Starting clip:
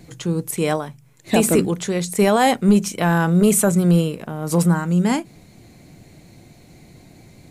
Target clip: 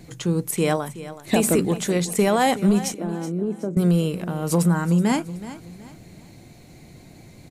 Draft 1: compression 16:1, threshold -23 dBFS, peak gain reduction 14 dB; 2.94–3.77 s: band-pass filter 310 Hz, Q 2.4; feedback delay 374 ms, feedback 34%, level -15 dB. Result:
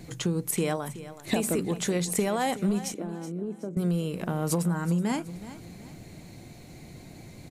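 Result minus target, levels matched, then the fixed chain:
compression: peak gain reduction +8.5 dB
compression 16:1, threshold -14 dBFS, peak gain reduction 5.5 dB; 2.94–3.77 s: band-pass filter 310 Hz, Q 2.4; feedback delay 374 ms, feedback 34%, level -15 dB

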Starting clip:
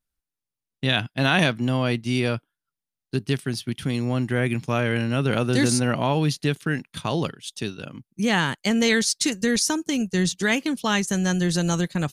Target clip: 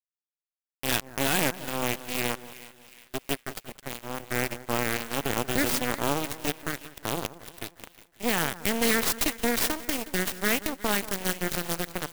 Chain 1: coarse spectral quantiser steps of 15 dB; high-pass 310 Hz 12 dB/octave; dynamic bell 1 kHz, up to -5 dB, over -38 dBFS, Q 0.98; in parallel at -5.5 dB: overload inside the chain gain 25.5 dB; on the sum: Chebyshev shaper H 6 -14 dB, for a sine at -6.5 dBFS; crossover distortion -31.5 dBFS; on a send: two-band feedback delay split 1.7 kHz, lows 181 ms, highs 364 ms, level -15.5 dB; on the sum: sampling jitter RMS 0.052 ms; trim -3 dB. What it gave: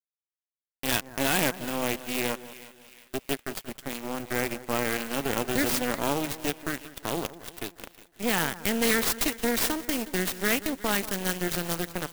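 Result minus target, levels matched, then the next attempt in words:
overload inside the chain: distortion +15 dB; crossover distortion: distortion -5 dB
coarse spectral quantiser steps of 15 dB; high-pass 310 Hz 12 dB/octave; dynamic bell 1 kHz, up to -5 dB, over -38 dBFS, Q 0.98; in parallel at -5.5 dB: overload inside the chain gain 14.5 dB; on the sum: Chebyshev shaper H 6 -14 dB, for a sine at -6.5 dBFS; crossover distortion -25.5 dBFS; on a send: two-band feedback delay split 1.7 kHz, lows 181 ms, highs 364 ms, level -15.5 dB; on the sum: sampling jitter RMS 0.052 ms; trim -3 dB

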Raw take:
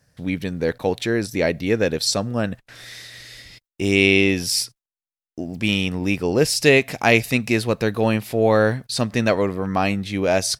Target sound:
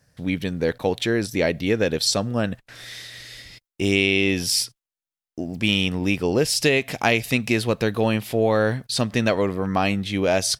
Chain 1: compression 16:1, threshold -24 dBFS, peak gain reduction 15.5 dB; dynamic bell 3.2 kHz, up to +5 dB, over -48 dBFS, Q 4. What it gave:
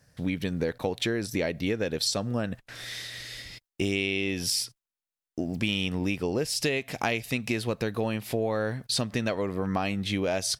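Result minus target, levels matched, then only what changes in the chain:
compression: peak gain reduction +9 dB
change: compression 16:1, threshold -14.5 dBFS, peak gain reduction 6.5 dB

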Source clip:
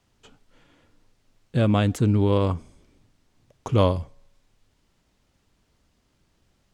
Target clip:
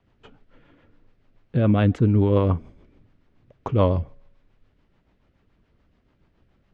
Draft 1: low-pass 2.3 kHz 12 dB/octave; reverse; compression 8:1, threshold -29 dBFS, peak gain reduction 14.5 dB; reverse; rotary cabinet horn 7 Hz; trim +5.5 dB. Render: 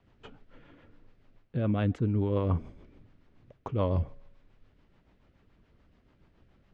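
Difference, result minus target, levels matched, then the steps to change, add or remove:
compression: peak gain reduction +9.5 dB
change: compression 8:1, threshold -18 dBFS, peak gain reduction 5 dB

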